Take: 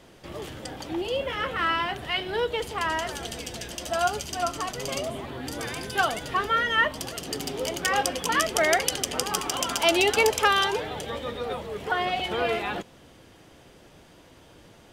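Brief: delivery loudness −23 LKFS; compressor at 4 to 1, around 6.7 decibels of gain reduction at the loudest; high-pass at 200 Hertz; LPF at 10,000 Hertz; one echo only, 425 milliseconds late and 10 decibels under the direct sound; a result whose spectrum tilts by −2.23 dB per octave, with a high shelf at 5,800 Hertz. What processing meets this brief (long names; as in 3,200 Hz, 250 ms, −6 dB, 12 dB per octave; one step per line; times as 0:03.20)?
high-pass filter 200 Hz
low-pass filter 10,000 Hz
high-shelf EQ 5,800 Hz −8.5 dB
downward compressor 4 to 1, threshold −25 dBFS
single-tap delay 425 ms −10 dB
level +7.5 dB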